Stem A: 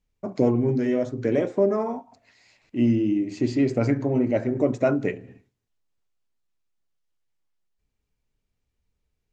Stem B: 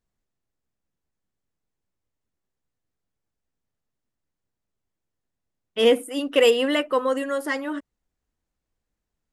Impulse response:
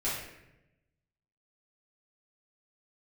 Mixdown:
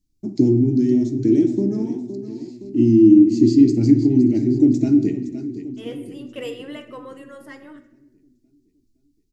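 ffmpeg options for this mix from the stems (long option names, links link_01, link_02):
-filter_complex "[0:a]firequalizer=gain_entry='entry(170,0);entry(330,9);entry(520,-28);entry(800,-16);entry(1100,-29);entry(1600,-20);entry(4500,2)':delay=0.05:min_phase=1,volume=2.5dB,asplit=4[link_01][link_02][link_03][link_04];[link_02]volume=-14dB[link_05];[link_03]volume=-10.5dB[link_06];[1:a]volume=-16.5dB,asplit=2[link_07][link_08];[link_08]volume=-13dB[link_09];[link_04]apad=whole_len=411416[link_10];[link_07][link_10]sidechaincompress=threshold=-28dB:ratio=8:attack=16:release=1150[link_11];[2:a]atrim=start_sample=2205[link_12];[link_05][link_09]amix=inputs=2:normalize=0[link_13];[link_13][link_12]afir=irnorm=-1:irlink=0[link_14];[link_06]aecho=0:1:516|1032|1548|2064|2580|3096|3612|4128:1|0.54|0.292|0.157|0.085|0.0459|0.0248|0.0134[link_15];[link_01][link_11][link_14][link_15]amix=inputs=4:normalize=0"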